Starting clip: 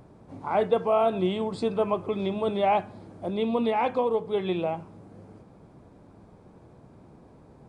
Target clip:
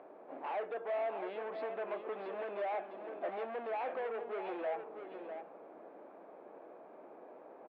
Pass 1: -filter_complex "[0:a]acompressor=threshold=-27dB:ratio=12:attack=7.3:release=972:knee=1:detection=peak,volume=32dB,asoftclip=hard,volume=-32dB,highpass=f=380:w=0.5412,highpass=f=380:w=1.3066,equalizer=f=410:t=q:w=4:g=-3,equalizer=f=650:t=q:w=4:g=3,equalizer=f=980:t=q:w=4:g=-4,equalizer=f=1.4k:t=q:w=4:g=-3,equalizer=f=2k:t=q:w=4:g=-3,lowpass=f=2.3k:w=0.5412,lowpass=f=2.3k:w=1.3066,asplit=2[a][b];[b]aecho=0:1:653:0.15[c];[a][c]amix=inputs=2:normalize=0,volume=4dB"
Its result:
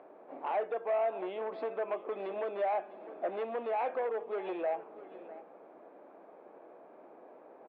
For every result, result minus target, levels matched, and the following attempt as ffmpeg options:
echo-to-direct -8.5 dB; overloaded stage: distortion -5 dB
-filter_complex "[0:a]acompressor=threshold=-27dB:ratio=12:attack=7.3:release=972:knee=1:detection=peak,volume=32dB,asoftclip=hard,volume=-32dB,highpass=f=380:w=0.5412,highpass=f=380:w=1.3066,equalizer=f=410:t=q:w=4:g=-3,equalizer=f=650:t=q:w=4:g=3,equalizer=f=980:t=q:w=4:g=-4,equalizer=f=1.4k:t=q:w=4:g=-3,equalizer=f=2k:t=q:w=4:g=-3,lowpass=f=2.3k:w=0.5412,lowpass=f=2.3k:w=1.3066,asplit=2[a][b];[b]aecho=0:1:653:0.398[c];[a][c]amix=inputs=2:normalize=0,volume=4dB"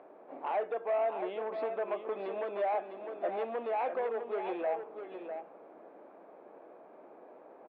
overloaded stage: distortion -5 dB
-filter_complex "[0:a]acompressor=threshold=-27dB:ratio=12:attack=7.3:release=972:knee=1:detection=peak,volume=38.5dB,asoftclip=hard,volume=-38.5dB,highpass=f=380:w=0.5412,highpass=f=380:w=1.3066,equalizer=f=410:t=q:w=4:g=-3,equalizer=f=650:t=q:w=4:g=3,equalizer=f=980:t=q:w=4:g=-4,equalizer=f=1.4k:t=q:w=4:g=-3,equalizer=f=2k:t=q:w=4:g=-3,lowpass=f=2.3k:w=0.5412,lowpass=f=2.3k:w=1.3066,asplit=2[a][b];[b]aecho=0:1:653:0.398[c];[a][c]amix=inputs=2:normalize=0,volume=4dB"

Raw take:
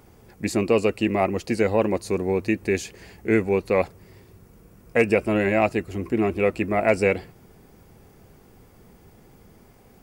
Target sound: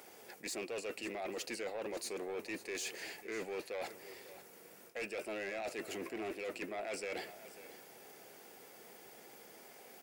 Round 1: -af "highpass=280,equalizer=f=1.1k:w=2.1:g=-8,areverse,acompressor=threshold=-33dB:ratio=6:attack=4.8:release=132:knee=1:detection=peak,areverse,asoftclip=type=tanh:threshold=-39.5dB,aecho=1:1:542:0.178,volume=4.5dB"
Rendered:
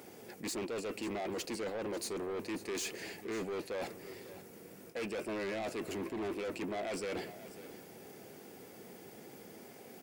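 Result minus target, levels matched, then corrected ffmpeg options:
250 Hz band +4.0 dB; compressor: peak gain reduction -4 dB
-af "highpass=600,equalizer=f=1.1k:w=2.1:g=-8,areverse,acompressor=threshold=-40dB:ratio=6:attack=4.8:release=132:knee=1:detection=peak,areverse,asoftclip=type=tanh:threshold=-39.5dB,aecho=1:1:542:0.178,volume=4.5dB"

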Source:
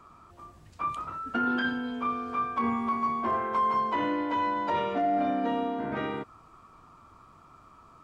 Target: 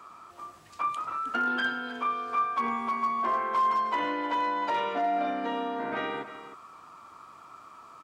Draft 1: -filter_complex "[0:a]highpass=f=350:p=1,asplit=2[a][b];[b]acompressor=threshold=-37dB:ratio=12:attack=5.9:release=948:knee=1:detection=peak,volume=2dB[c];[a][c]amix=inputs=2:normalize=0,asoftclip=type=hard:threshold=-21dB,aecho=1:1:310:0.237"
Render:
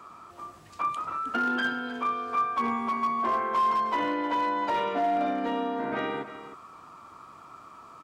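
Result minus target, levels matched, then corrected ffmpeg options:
250 Hz band +3.0 dB
-filter_complex "[0:a]highpass=f=720:p=1,asplit=2[a][b];[b]acompressor=threshold=-37dB:ratio=12:attack=5.9:release=948:knee=1:detection=peak,volume=2dB[c];[a][c]amix=inputs=2:normalize=0,asoftclip=type=hard:threshold=-21dB,aecho=1:1:310:0.237"

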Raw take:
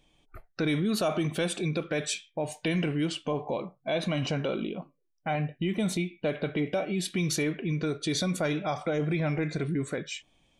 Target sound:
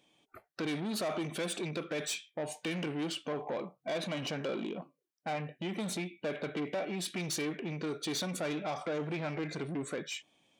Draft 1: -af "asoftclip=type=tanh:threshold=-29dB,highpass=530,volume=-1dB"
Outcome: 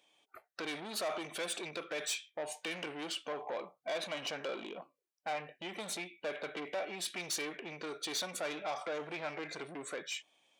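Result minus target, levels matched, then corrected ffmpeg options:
250 Hz band -7.5 dB
-af "asoftclip=type=tanh:threshold=-29dB,highpass=200,volume=-1dB"

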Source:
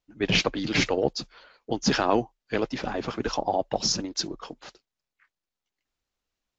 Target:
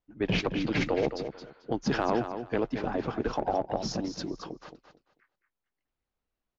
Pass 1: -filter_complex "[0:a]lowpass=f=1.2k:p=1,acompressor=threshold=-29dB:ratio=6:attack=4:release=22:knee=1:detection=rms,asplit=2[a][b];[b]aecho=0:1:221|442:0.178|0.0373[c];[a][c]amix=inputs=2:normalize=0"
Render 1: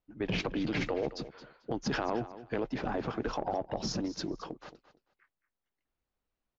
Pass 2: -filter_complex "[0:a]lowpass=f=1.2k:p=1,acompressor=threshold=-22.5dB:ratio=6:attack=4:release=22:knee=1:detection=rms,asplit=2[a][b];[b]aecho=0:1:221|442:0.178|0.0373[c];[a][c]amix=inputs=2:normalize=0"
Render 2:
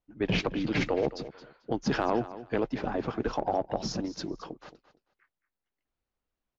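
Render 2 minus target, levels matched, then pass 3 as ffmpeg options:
echo-to-direct -6 dB
-filter_complex "[0:a]lowpass=f=1.2k:p=1,acompressor=threshold=-22.5dB:ratio=6:attack=4:release=22:knee=1:detection=rms,asplit=2[a][b];[b]aecho=0:1:221|442|663:0.355|0.0745|0.0156[c];[a][c]amix=inputs=2:normalize=0"

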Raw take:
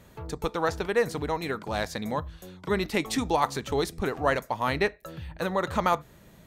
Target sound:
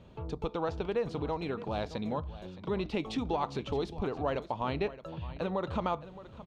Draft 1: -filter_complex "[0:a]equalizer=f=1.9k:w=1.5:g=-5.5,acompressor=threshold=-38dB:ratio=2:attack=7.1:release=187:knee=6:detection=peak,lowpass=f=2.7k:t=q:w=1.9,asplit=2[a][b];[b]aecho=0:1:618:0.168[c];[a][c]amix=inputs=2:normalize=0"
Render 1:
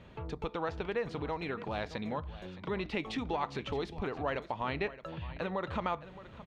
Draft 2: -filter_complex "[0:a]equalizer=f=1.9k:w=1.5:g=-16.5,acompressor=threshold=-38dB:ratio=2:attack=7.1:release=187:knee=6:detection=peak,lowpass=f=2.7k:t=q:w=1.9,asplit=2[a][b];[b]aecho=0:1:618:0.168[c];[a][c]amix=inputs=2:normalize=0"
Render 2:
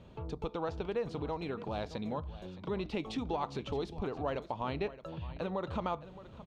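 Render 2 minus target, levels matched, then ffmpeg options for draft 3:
compressor: peak gain reduction +3 dB
-filter_complex "[0:a]equalizer=f=1.9k:w=1.5:g=-16.5,acompressor=threshold=-31.5dB:ratio=2:attack=7.1:release=187:knee=6:detection=peak,lowpass=f=2.7k:t=q:w=1.9,asplit=2[a][b];[b]aecho=0:1:618:0.168[c];[a][c]amix=inputs=2:normalize=0"

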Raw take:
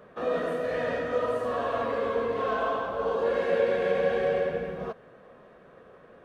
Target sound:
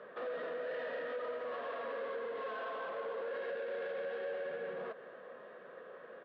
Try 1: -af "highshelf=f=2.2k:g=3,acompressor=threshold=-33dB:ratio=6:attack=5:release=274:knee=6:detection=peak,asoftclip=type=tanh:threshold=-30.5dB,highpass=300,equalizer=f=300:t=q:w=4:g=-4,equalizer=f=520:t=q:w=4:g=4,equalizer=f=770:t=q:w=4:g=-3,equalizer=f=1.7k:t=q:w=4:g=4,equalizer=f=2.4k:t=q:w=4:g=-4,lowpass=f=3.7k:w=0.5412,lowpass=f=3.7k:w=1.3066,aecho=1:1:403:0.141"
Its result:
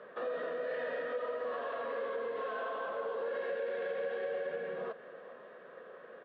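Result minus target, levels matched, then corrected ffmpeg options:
echo 0.142 s late; soft clip: distortion -8 dB
-af "highshelf=f=2.2k:g=3,acompressor=threshold=-33dB:ratio=6:attack=5:release=274:knee=6:detection=peak,asoftclip=type=tanh:threshold=-37.5dB,highpass=300,equalizer=f=300:t=q:w=4:g=-4,equalizer=f=520:t=q:w=4:g=4,equalizer=f=770:t=q:w=4:g=-3,equalizer=f=1.7k:t=q:w=4:g=4,equalizer=f=2.4k:t=q:w=4:g=-4,lowpass=f=3.7k:w=0.5412,lowpass=f=3.7k:w=1.3066,aecho=1:1:261:0.141"

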